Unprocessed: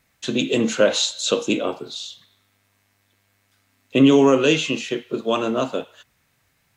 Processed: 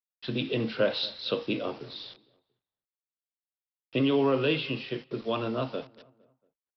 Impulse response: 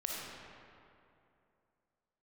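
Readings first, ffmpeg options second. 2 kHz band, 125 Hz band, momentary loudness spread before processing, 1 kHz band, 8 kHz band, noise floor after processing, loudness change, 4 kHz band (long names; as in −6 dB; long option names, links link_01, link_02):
−9.0 dB, −5.0 dB, 16 LU, −9.0 dB, below −35 dB, below −85 dBFS, −9.5 dB, −9.0 dB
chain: -filter_complex "[0:a]equalizer=frequency=120:width_type=o:width=0.41:gain=13,acrossover=split=300[link_01][link_02];[link_01]acompressor=threshold=-21dB:ratio=6[link_03];[link_03][link_02]amix=inputs=2:normalize=0,aresample=11025,acrusher=bits=6:mix=0:aa=0.000001,aresample=44100,asplit=2[link_04][link_05];[link_05]adelay=229,lowpass=frequency=1800:poles=1,volume=-21dB,asplit=2[link_06][link_07];[link_07]adelay=229,lowpass=frequency=1800:poles=1,volume=0.41,asplit=2[link_08][link_09];[link_09]adelay=229,lowpass=frequency=1800:poles=1,volume=0.41[link_10];[link_04][link_06][link_08][link_10]amix=inputs=4:normalize=0,volume=-9dB"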